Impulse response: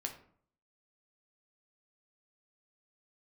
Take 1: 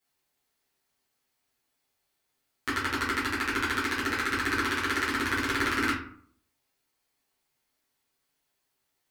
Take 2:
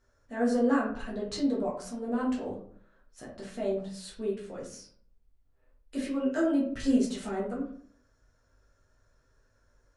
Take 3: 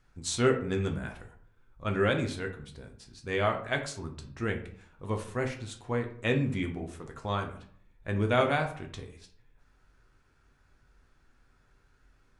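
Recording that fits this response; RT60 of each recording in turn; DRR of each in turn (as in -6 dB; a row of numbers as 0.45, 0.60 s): 3; 0.55, 0.55, 0.55 s; -11.0, -6.0, 3.0 dB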